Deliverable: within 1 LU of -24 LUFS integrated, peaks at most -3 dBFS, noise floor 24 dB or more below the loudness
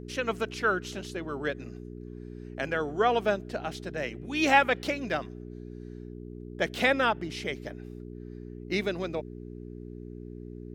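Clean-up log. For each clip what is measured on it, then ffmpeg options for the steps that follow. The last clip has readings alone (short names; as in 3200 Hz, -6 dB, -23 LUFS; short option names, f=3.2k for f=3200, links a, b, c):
hum 60 Hz; harmonics up to 420 Hz; hum level -39 dBFS; loudness -29.0 LUFS; peak -7.0 dBFS; loudness target -24.0 LUFS
-> -af "bandreject=f=60:t=h:w=4,bandreject=f=120:t=h:w=4,bandreject=f=180:t=h:w=4,bandreject=f=240:t=h:w=4,bandreject=f=300:t=h:w=4,bandreject=f=360:t=h:w=4,bandreject=f=420:t=h:w=4"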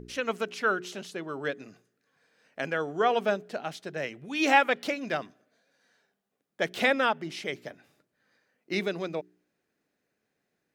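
hum none; loudness -29.0 LUFS; peak -7.0 dBFS; loudness target -24.0 LUFS
-> -af "volume=5dB,alimiter=limit=-3dB:level=0:latency=1"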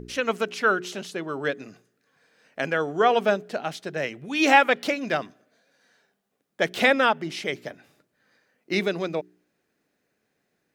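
loudness -24.5 LUFS; peak -3.0 dBFS; noise floor -76 dBFS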